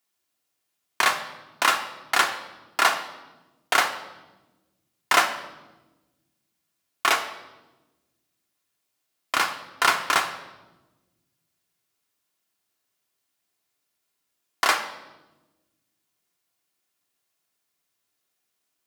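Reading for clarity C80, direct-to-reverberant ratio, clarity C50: 13.0 dB, 4.5 dB, 10.0 dB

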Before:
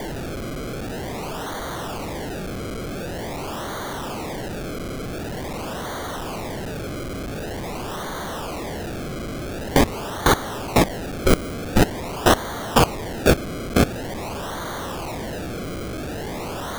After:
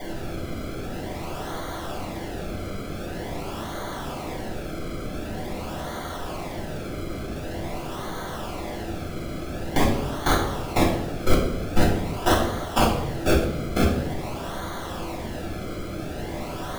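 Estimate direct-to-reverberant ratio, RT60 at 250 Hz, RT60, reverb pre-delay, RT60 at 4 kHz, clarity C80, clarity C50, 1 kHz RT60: -5.0 dB, 1.3 s, 0.90 s, 5 ms, 0.60 s, 7.5 dB, 5.0 dB, 0.75 s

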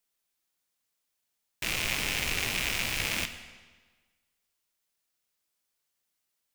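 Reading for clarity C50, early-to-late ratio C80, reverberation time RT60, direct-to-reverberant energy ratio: 10.0 dB, 11.5 dB, 1.4 s, 8.0 dB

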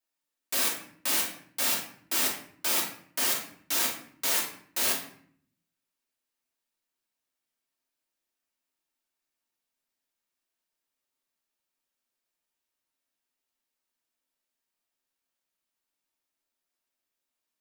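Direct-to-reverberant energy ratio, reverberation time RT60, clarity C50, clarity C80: -2.5 dB, 0.60 s, 5.0 dB, 10.0 dB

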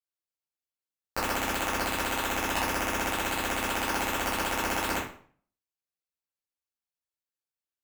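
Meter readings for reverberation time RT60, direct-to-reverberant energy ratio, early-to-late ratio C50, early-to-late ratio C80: 0.50 s, -10.0 dB, 3.5 dB, 9.0 dB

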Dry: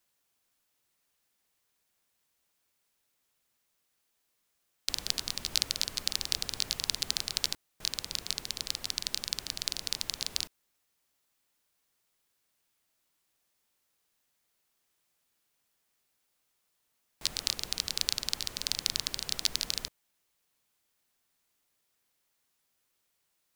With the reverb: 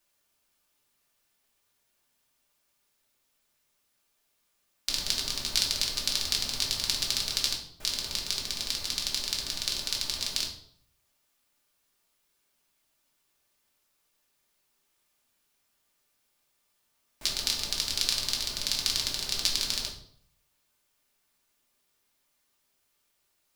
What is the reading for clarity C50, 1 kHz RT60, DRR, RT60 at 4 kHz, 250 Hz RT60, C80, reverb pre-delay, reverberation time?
8.0 dB, 0.55 s, -1.5 dB, 0.50 s, 0.70 s, 12.0 dB, 3 ms, 0.60 s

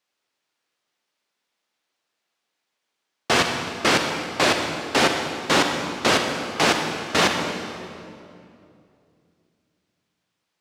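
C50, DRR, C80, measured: 4.0 dB, 3.5 dB, 5.0 dB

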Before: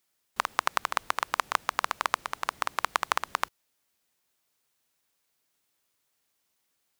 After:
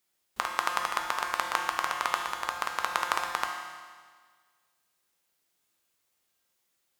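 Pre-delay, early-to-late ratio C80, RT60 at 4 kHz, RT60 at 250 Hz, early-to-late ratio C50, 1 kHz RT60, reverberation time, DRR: 6 ms, 5.0 dB, 1.6 s, 1.6 s, 3.5 dB, 1.6 s, 1.6 s, 1.0 dB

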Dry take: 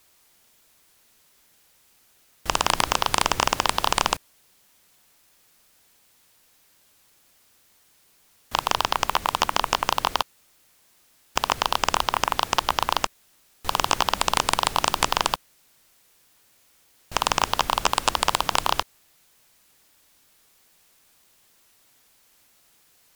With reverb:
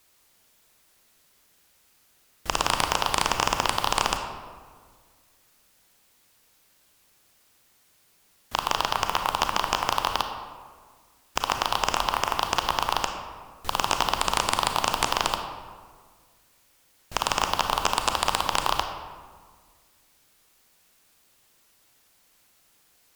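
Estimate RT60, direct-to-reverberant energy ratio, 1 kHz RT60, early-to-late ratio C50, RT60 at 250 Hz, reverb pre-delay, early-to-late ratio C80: 1.7 s, 5.0 dB, 1.6 s, 6.0 dB, 2.0 s, 29 ms, 7.5 dB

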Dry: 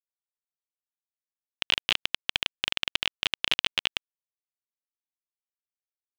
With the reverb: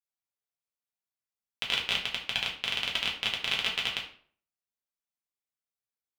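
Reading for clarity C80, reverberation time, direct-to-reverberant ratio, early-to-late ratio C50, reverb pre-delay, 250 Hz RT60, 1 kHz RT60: 12.0 dB, 0.50 s, -3.0 dB, 7.5 dB, 3 ms, 0.50 s, 0.45 s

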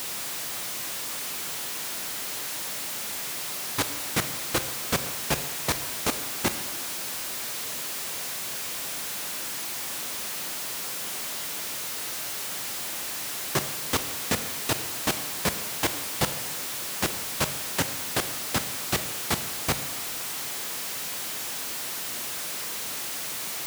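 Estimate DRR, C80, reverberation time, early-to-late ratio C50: 10.0 dB, 12.5 dB, 1.2 s, 11.0 dB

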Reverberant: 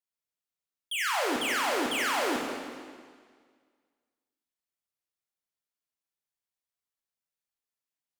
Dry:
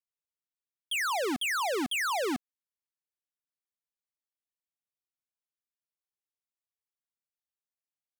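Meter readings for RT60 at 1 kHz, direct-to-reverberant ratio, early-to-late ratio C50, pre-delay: 1.8 s, -1.5 dB, 1.5 dB, 22 ms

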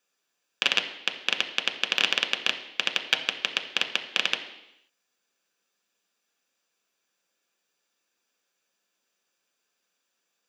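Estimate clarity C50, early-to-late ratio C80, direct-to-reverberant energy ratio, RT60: 10.0 dB, 12.0 dB, 3.5 dB, 0.85 s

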